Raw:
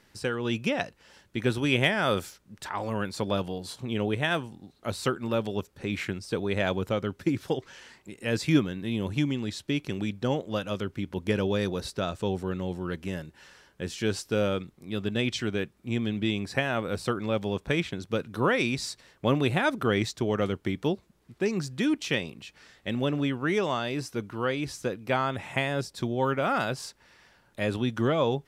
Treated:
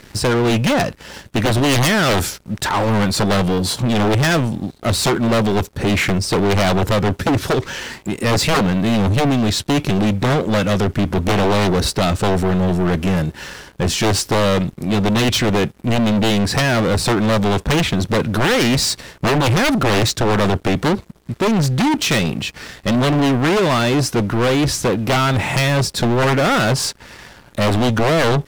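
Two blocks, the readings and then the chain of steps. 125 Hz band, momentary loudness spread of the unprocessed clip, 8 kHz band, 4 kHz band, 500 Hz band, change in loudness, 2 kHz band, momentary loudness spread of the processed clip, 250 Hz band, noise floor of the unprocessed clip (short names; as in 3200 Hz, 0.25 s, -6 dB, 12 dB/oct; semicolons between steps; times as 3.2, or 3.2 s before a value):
+14.0 dB, 10 LU, +18.5 dB, +14.0 dB, +10.5 dB, +12.0 dB, +10.5 dB, 5 LU, +12.0 dB, -64 dBFS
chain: low shelf 340 Hz +6 dB; wavefolder -21.5 dBFS; sample leveller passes 3; gain +9 dB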